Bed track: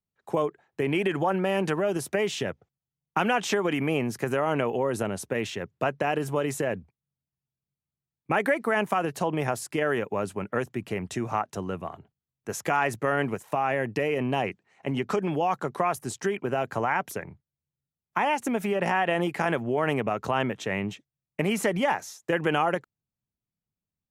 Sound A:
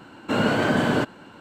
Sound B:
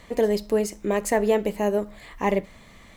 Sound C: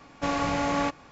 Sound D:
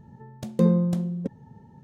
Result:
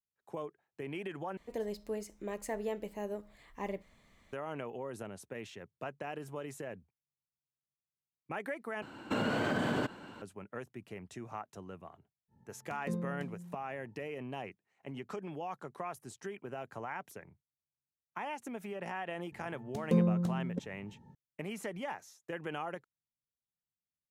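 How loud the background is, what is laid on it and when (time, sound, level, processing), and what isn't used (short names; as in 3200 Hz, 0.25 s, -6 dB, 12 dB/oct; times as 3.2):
bed track -15 dB
1.37 replace with B -16 dB
8.82 replace with A -4 dB + compressor, threshold -24 dBFS
12.28 add D -17.5 dB, fades 0.05 s
19.32 add D -7.5 dB
not used: C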